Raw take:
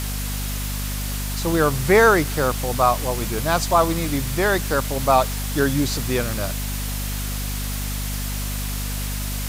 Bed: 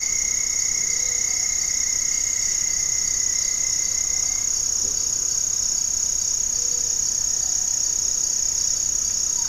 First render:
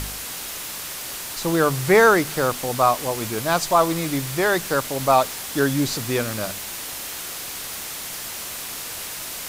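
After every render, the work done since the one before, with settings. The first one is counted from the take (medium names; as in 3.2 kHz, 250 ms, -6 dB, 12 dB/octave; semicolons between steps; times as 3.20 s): de-hum 50 Hz, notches 5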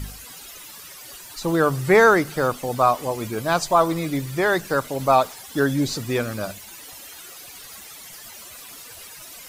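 noise reduction 14 dB, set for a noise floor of -33 dBFS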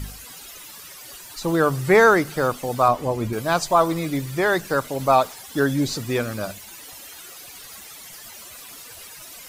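2.88–3.33 s: tilt EQ -2 dB/octave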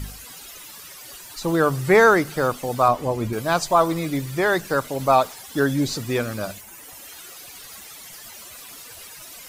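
6.60–7.07 s: peaking EQ 4.1 kHz -12.5 dB -> -2 dB 1 oct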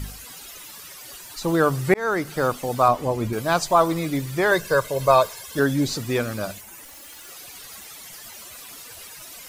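1.94–2.57 s: fade in equal-power; 4.51–5.59 s: comb 1.9 ms; 6.85–7.29 s: comb filter that takes the minimum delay 3.5 ms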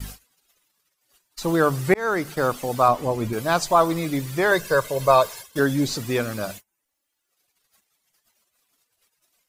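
gate -36 dBFS, range -36 dB; peaking EQ 72 Hz -4 dB 0.91 oct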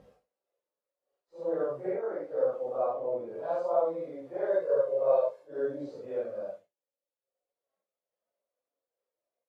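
phase randomisation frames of 200 ms; band-pass filter 530 Hz, Q 6.4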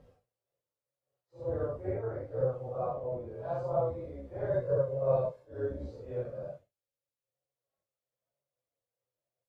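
octave divider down 2 oct, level +3 dB; flange 0.42 Hz, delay 6.8 ms, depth 9.5 ms, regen -47%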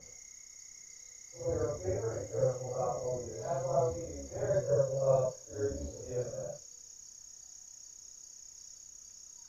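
add bed -29.5 dB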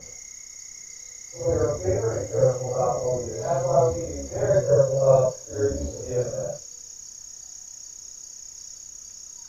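trim +10.5 dB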